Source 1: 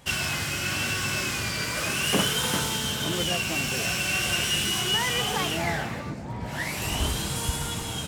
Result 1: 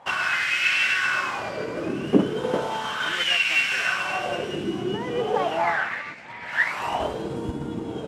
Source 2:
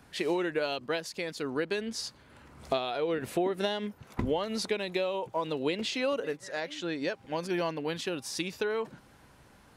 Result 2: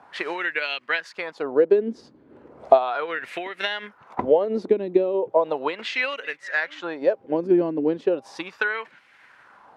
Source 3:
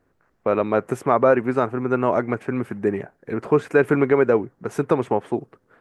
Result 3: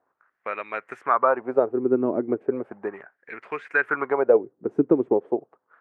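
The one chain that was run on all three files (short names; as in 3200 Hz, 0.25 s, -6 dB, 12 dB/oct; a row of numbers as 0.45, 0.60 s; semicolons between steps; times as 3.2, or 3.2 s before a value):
transient shaper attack +3 dB, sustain -3 dB; wah 0.36 Hz 300–2200 Hz, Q 2.5; match loudness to -24 LUFS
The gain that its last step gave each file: +12.5, +15.5, +3.5 dB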